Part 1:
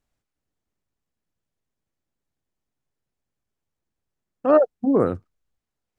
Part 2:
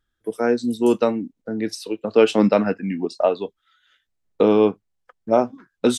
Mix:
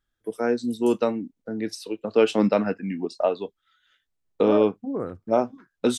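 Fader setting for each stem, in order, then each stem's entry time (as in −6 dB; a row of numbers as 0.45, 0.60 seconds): −10.5, −4.0 decibels; 0.00, 0.00 seconds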